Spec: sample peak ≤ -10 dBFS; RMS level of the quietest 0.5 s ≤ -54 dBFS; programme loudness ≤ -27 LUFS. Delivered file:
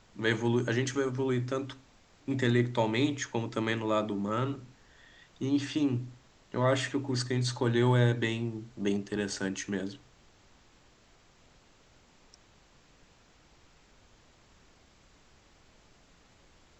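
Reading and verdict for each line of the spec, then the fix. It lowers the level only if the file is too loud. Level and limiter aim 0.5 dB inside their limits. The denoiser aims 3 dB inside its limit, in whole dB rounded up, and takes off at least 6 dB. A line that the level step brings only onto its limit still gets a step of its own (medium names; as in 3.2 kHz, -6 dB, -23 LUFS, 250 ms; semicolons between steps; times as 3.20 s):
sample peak -13.5 dBFS: pass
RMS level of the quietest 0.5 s -61 dBFS: pass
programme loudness -30.5 LUFS: pass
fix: none needed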